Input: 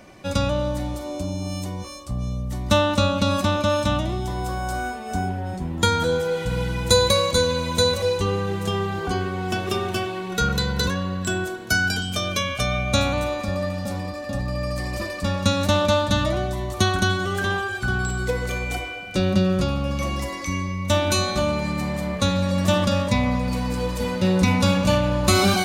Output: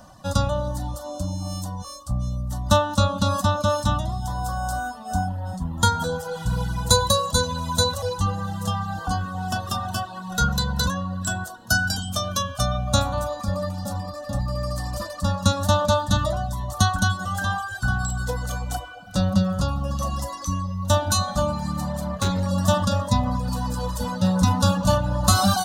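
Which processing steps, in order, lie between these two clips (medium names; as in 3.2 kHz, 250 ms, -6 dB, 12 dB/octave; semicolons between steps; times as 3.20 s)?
static phaser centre 940 Hz, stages 4; 21.87–22.47 s: hard clipper -21 dBFS, distortion -28 dB; reverb removal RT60 0.74 s; trim +4 dB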